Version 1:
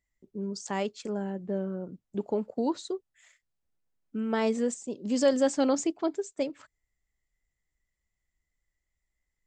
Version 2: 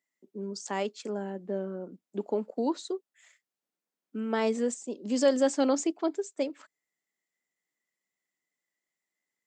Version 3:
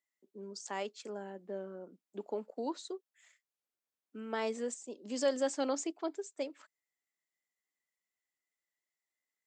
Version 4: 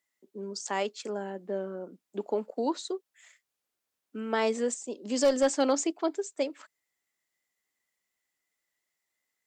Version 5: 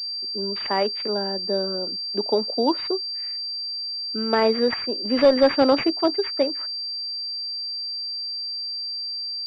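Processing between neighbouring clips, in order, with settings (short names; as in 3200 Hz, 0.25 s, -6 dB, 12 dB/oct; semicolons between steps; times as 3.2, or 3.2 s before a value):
HPF 210 Hz 24 dB/oct
low shelf 250 Hz -11.5 dB; gain -5 dB
one-sided clip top -27 dBFS; gain +8 dB
pulse-width modulation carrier 4700 Hz; gain +8 dB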